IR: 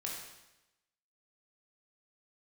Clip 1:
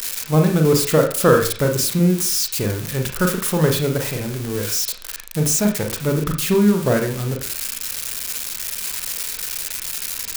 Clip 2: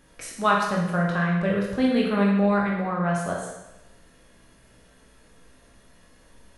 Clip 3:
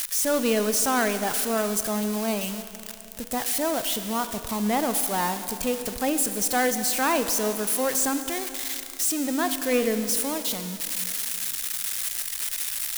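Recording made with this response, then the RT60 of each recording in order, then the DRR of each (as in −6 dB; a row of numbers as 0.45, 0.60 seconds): 2; 0.45, 0.95, 2.8 seconds; 3.0, −3.0, 9.0 decibels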